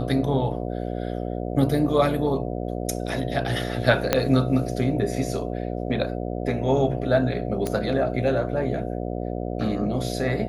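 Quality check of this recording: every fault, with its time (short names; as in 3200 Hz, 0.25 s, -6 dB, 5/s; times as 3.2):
buzz 60 Hz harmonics 12 -29 dBFS
4.13 pop -3 dBFS
7.67 pop -13 dBFS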